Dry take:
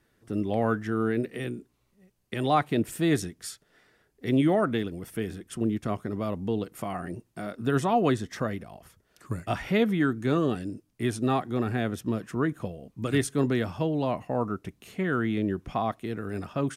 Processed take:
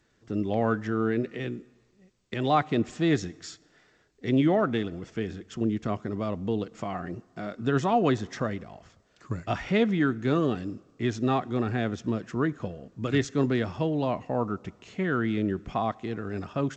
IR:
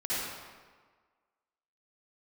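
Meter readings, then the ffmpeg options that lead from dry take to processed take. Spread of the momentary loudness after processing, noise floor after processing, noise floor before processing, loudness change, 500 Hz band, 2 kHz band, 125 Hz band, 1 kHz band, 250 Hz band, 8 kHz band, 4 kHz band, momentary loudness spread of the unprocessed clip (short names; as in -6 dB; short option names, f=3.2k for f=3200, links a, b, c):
13 LU, -65 dBFS, -71 dBFS, 0.0 dB, 0.0 dB, 0.0 dB, 0.0 dB, 0.0 dB, 0.0 dB, -5.5 dB, 0.0 dB, 13 LU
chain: -filter_complex "[0:a]asplit=2[a][b];[1:a]atrim=start_sample=2205[c];[b][c]afir=irnorm=-1:irlink=0,volume=-31dB[d];[a][d]amix=inputs=2:normalize=0" -ar 16000 -c:a g722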